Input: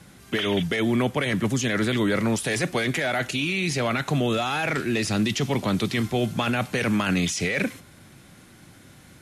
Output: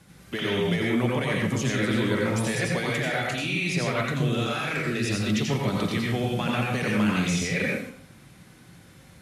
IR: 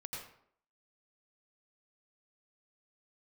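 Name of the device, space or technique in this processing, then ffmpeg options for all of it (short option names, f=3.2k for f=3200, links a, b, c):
bathroom: -filter_complex "[1:a]atrim=start_sample=2205[a];[0:a][a]afir=irnorm=-1:irlink=0,asettb=1/sr,asplit=3[b][c][d];[b]atrim=end=4.034[e];[c]atrim=start=4.03:end=5.41,asetpts=PTS-STARTPTS,afade=t=in:d=0.004:c=qsin,afade=t=out:st=1.376:d=0.004:c=qsin,equalizer=f=830:w=3.4:g=-11[f];[d]atrim=start=5.406[g];[e][f]acrossfade=d=0.004:c1=hsin:c2=qsin[h];[h][g]acrossfade=d=0.004:c1=qsin:c2=hsin"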